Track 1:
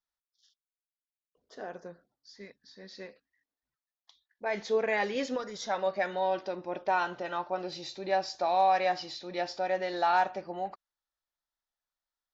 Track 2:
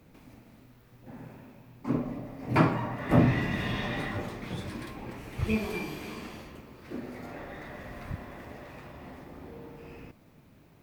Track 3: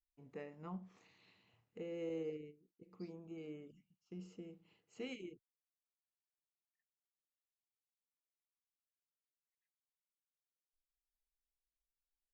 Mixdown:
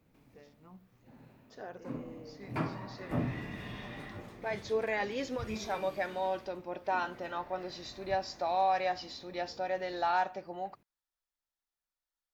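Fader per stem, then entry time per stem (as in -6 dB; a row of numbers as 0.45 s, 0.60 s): -4.0 dB, -11.5 dB, -8.5 dB; 0.00 s, 0.00 s, 0.00 s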